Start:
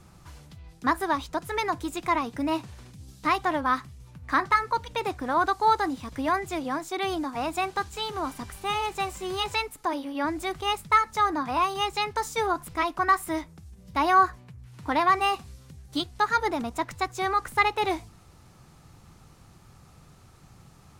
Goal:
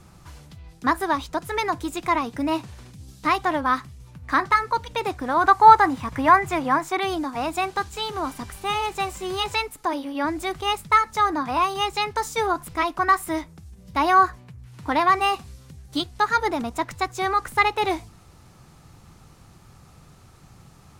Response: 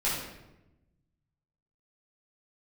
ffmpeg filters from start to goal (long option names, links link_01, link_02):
-filter_complex "[0:a]asettb=1/sr,asplit=3[link_01][link_02][link_03];[link_01]atrim=end=5.444[link_04];[link_02]atrim=start=5.44:end=7,asetpts=PTS-STARTPTS,afade=type=in:duration=0.004:curve=qsin,afade=type=out:start_time=1.556:duration=0.004:curve=qsin,equalizer=frequency=125:width_type=o:width=1:gain=8,equalizer=frequency=1000:width_type=o:width=1:gain=8,equalizer=frequency=2000:width_type=o:width=1:gain=6,equalizer=frequency=4000:width_type=o:width=1:gain=-3[link_05];[link_03]atrim=start=6.996[link_06];[link_04][link_05]acrossfade=duration=0.004:curve1=hsin:curve2=qsin[link_07];[link_07][link_06]acrossfade=duration=0.004:curve1=qsin:curve2=hsin,volume=3dB"